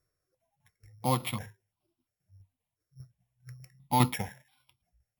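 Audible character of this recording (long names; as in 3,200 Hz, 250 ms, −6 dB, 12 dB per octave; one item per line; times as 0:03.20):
a buzz of ramps at a fixed pitch in blocks of 8 samples
tremolo saw down 5 Hz, depth 55%
notches that jump at a steady rate 2.9 Hz 850–1,800 Hz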